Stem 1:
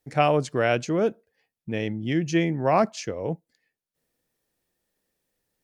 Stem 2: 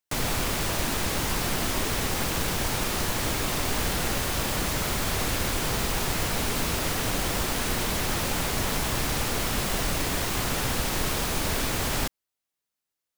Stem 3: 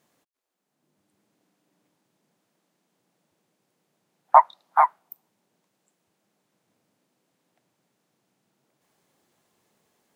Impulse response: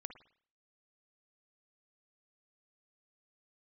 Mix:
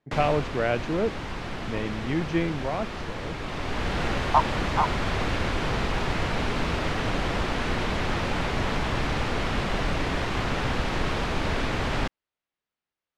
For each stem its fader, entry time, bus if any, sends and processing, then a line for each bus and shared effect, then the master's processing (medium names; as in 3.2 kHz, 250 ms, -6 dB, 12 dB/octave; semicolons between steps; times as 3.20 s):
2.53 s -3 dB -> 2.75 s -10.5 dB, 0.00 s, no send, none
+2.0 dB, 0.00 s, no send, auto duck -7 dB, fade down 0.50 s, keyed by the first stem
-7.0 dB, 0.00 s, no send, none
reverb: none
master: low-pass 3 kHz 12 dB/octave